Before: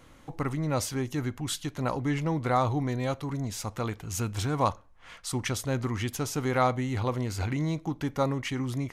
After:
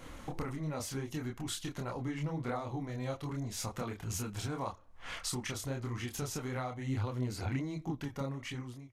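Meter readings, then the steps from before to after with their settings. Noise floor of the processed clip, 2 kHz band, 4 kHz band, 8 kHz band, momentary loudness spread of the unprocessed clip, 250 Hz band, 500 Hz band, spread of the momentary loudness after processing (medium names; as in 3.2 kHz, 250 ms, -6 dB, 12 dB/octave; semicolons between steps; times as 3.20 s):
-53 dBFS, -7.5 dB, -5.5 dB, -5.0 dB, 7 LU, -8.0 dB, -10.0 dB, 4 LU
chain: fade out at the end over 1.85 s; compression 10:1, threshold -40 dBFS, peak gain reduction 20.5 dB; chorus voices 4, 1.5 Hz, delay 27 ms, depth 3 ms; trim +8.5 dB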